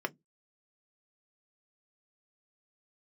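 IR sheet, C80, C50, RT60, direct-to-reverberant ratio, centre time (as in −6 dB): 43.0 dB, 32.0 dB, 0.15 s, 4.5 dB, 3 ms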